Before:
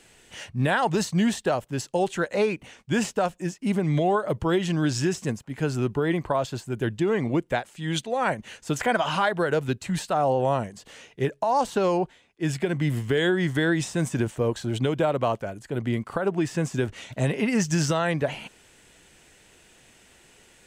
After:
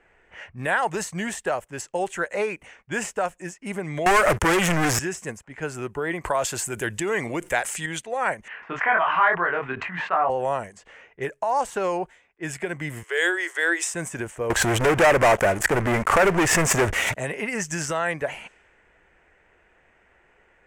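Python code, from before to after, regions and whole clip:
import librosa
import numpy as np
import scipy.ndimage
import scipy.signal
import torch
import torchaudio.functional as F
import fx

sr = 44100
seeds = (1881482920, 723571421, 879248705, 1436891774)

y = fx.chain(x, sr, fx.peak_eq(hz=530.0, db=-5.0, octaves=0.9),
    fx.leveller(passes=5),
    fx.band_squash(depth_pct=70), at=(4.06, 4.99))
y = fx.chain(y, sr, fx.high_shelf(hz=2900.0, db=9.5),
    fx.env_flatten(amount_pct=50), at=(6.24, 7.86))
y = fx.chain(y, sr, fx.cabinet(low_hz=190.0, low_slope=12, high_hz=2900.0, hz=(210.0, 340.0, 520.0, 1100.0, 1800.0), db=(-4, -4, -8, 8, 3)),
    fx.doubler(ms=23.0, db=-3),
    fx.sustainer(db_per_s=68.0), at=(8.48, 10.3))
y = fx.chain(y, sr, fx.cheby_ripple_highpass(hz=330.0, ripple_db=3),
    fx.high_shelf(hz=2000.0, db=10.0),
    fx.band_widen(depth_pct=40), at=(13.03, 13.94))
y = fx.chain(y, sr, fx.high_shelf(hz=7300.0, db=-10.5),
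    fx.leveller(passes=5),
    fx.pre_swell(db_per_s=84.0), at=(14.5, 17.15))
y = fx.env_lowpass(y, sr, base_hz=1600.0, full_db=-24.0)
y = fx.graphic_eq(y, sr, hz=(125, 250, 2000, 4000, 8000), db=(-9, -8, 6, -11, 5))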